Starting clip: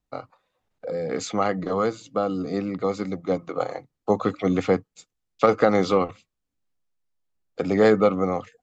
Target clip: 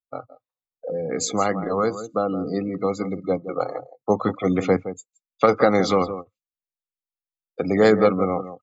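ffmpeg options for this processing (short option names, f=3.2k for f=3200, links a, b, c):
-af "aemphasis=mode=production:type=50fm,aecho=1:1:168:0.266,afftdn=nr=30:nf=-36,volume=1.5dB"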